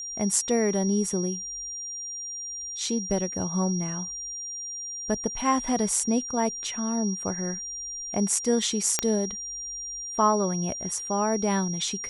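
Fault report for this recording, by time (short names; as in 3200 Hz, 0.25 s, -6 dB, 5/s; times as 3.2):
tone 5700 Hz -33 dBFS
8.99 pop -6 dBFS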